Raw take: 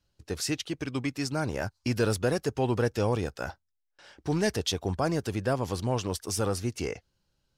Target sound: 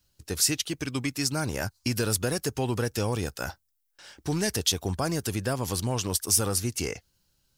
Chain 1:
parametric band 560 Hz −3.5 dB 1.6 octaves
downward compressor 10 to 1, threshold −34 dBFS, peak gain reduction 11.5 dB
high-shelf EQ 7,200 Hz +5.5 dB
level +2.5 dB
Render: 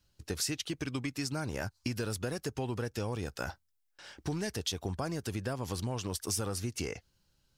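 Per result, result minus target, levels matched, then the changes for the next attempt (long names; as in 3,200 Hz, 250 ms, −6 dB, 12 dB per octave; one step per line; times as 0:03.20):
downward compressor: peak gain reduction +7.5 dB; 8,000 Hz band −3.0 dB
change: downward compressor 10 to 1, threshold −25.5 dBFS, peak gain reduction 4 dB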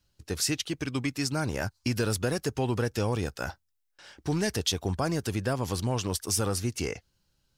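8,000 Hz band −3.5 dB
change: high-shelf EQ 7,200 Hz +16.5 dB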